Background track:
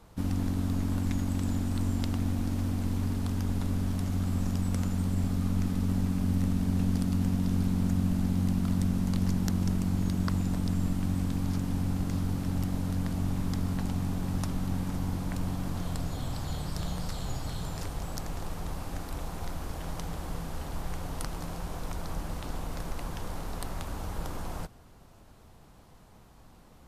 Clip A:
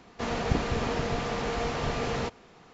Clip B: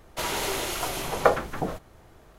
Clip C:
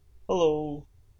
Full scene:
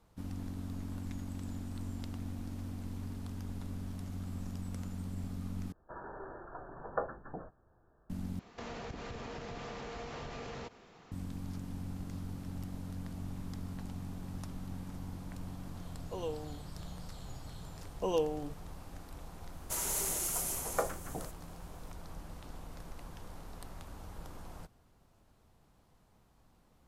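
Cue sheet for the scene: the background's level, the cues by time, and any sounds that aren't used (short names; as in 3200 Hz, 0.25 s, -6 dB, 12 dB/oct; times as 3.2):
background track -11.5 dB
5.72 replace with B -15 dB + brick-wall FIR low-pass 1800 Hz
8.39 replace with A -4 dB + compressor, threshold -36 dBFS
15.82 add C -15.5 dB
17.73 add C -7.5 dB
19.53 add B -13 dB + resonant high shelf 5400 Hz +13.5 dB, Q 1.5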